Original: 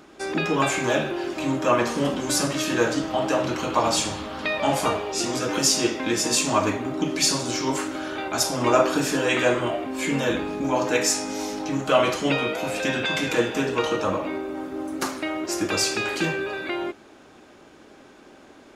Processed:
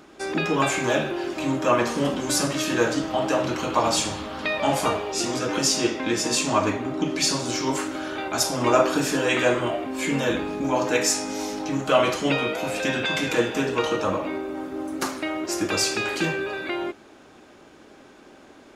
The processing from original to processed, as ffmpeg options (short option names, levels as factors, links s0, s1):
-filter_complex "[0:a]asettb=1/sr,asplit=3[s0][s1][s2];[s0]atrim=end=5.344[s3];[s1]atrim=start=5.34:end=7.43,asetpts=PTS-STARTPTS,afade=t=in:d=0.004:c=qsin,afade=t=out:st=2.086:d=0.004:c=qsin,highshelf=f=9500:g=-8[s4];[s2]atrim=start=7.426[s5];[s3][s4]acrossfade=d=0.004:c1=hsin:c2=qsin[s6];[s6][s5]acrossfade=d=0.004:c1=qsin:c2=hsin"